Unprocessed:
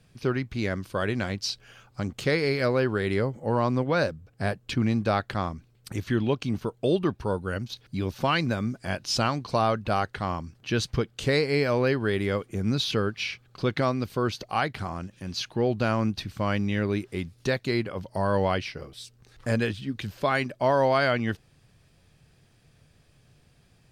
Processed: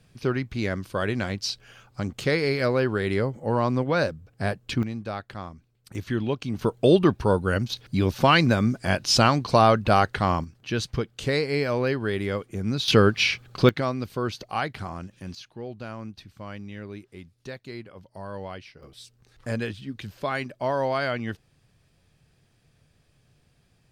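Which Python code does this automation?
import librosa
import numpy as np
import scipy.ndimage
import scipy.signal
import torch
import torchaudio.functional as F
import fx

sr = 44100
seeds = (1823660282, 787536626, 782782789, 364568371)

y = fx.gain(x, sr, db=fx.steps((0.0, 1.0), (4.83, -8.0), (5.95, -1.5), (6.59, 6.5), (10.44, -1.0), (12.88, 9.0), (13.69, -1.5), (15.35, -12.0), (18.83, -3.5)))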